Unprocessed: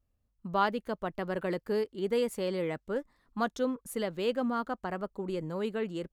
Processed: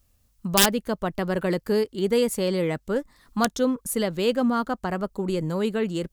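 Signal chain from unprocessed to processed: wrapped overs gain 18 dB; tone controls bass +5 dB, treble +7 dB; mismatched tape noise reduction encoder only; gain +6.5 dB

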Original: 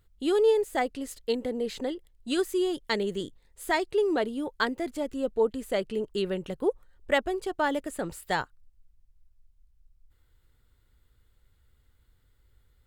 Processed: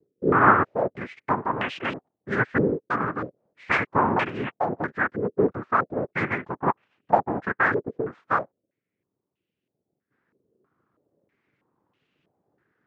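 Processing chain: noise vocoder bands 3; stepped low-pass 3.1 Hz 450–2800 Hz

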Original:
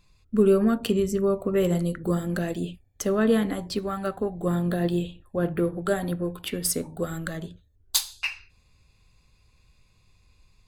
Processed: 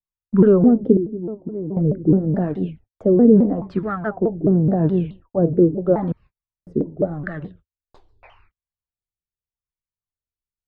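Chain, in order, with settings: 6.12–6.67 room tone; gate -48 dBFS, range -39 dB; dynamic EQ 200 Hz, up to +8 dB, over -36 dBFS, Q 0.71; LFO low-pass sine 0.84 Hz 380–1700 Hz; 0.97–1.77 vocal tract filter u; shaped vibrato saw down 4.7 Hz, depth 250 cents

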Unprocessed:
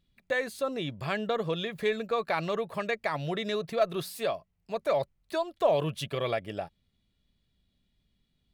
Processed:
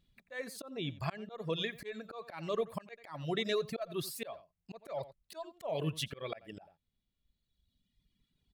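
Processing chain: outdoor echo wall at 15 m, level -10 dB; reverb removal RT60 1.7 s; auto swell 0.312 s

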